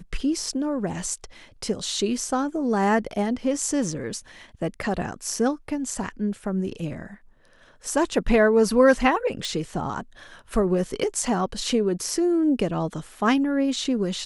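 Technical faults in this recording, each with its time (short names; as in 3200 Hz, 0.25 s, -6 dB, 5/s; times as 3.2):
9.45 pop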